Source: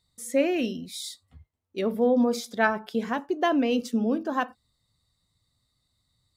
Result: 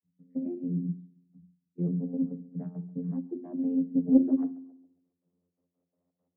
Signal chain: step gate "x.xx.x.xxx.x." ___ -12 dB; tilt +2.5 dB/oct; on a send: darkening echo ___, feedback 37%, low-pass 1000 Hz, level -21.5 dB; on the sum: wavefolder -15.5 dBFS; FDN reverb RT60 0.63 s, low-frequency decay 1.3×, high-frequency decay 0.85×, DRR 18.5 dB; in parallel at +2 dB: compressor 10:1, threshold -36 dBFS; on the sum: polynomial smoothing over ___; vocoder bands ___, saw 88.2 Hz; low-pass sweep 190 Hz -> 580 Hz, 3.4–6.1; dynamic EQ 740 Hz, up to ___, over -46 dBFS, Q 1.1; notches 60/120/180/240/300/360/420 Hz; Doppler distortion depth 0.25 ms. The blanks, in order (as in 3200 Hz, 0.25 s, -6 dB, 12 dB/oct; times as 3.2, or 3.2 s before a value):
170 bpm, 0.135 s, 25 samples, 32, -3 dB